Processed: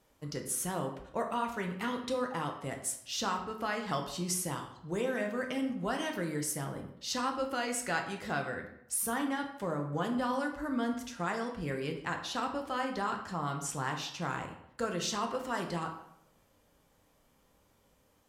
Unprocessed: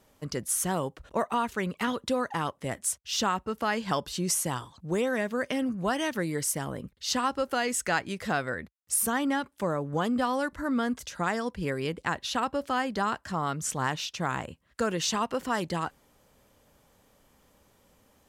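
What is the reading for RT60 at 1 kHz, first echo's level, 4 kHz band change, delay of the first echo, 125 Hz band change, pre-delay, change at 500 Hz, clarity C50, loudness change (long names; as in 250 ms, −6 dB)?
0.75 s, no echo audible, −5.5 dB, no echo audible, −4.0 dB, 5 ms, −5.0 dB, 8.0 dB, −5.0 dB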